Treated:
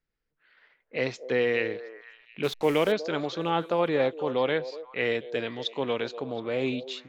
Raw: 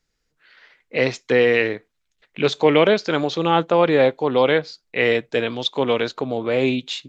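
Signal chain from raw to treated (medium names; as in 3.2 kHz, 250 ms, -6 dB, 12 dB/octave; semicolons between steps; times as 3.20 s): 2.43–2.92 s: send-on-delta sampling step -29.5 dBFS; repeats whose band climbs or falls 241 ms, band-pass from 510 Hz, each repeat 1.4 oct, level -11 dB; level-controlled noise filter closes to 2.9 kHz, open at -15.5 dBFS; trim -9 dB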